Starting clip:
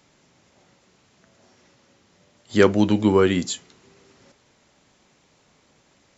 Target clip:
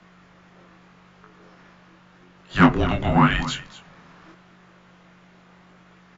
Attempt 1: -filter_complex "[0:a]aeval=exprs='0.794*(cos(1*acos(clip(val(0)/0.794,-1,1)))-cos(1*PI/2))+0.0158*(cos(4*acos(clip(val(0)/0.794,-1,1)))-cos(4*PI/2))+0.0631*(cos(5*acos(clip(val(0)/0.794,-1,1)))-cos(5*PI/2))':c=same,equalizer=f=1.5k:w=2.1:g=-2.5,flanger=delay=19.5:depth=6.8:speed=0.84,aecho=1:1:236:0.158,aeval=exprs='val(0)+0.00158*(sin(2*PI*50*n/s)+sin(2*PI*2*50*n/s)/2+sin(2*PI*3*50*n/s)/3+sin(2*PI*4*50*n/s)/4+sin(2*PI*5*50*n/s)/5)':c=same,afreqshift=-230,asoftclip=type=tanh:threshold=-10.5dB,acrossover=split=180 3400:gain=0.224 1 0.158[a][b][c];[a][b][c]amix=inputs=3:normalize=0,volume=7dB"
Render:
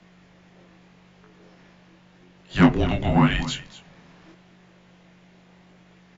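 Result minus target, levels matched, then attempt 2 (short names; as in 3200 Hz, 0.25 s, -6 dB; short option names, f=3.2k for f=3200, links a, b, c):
2000 Hz band -2.5 dB
-filter_complex "[0:a]aeval=exprs='0.794*(cos(1*acos(clip(val(0)/0.794,-1,1)))-cos(1*PI/2))+0.0158*(cos(4*acos(clip(val(0)/0.794,-1,1)))-cos(4*PI/2))+0.0631*(cos(5*acos(clip(val(0)/0.794,-1,1)))-cos(5*PI/2))':c=same,equalizer=f=1.5k:w=2.1:g=6.5,flanger=delay=19.5:depth=6.8:speed=0.84,aecho=1:1:236:0.158,aeval=exprs='val(0)+0.00158*(sin(2*PI*50*n/s)+sin(2*PI*2*50*n/s)/2+sin(2*PI*3*50*n/s)/3+sin(2*PI*4*50*n/s)/4+sin(2*PI*5*50*n/s)/5)':c=same,afreqshift=-230,asoftclip=type=tanh:threshold=-10.5dB,acrossover=split=180 3400:gain=0.224 1 0.158[a][b][c];[a][b][c]amix=inputs=3:normalize=0,volume=7dB"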